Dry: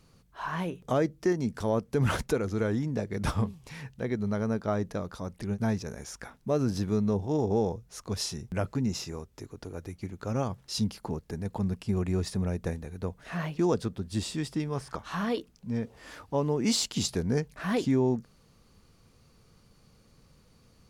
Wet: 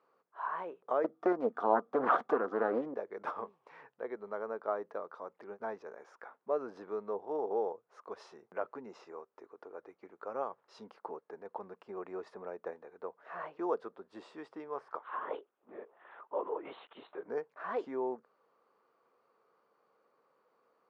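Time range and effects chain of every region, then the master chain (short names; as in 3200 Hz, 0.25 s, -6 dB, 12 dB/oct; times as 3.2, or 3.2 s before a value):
1.04–2.94 small resonant body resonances 240/720/1200/3400 Hz, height 14 dB, ringing for 25 ms + Doppler distortion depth 0.55 ms
14.99–17.28 low shelf 290 Hz -8 dB + LPC vocoder at 8 kHz whisper
whole clip: Chebyshev band-pass 420–1200 Hz, order 2; tilt +3 dB/oct; gain -1 dB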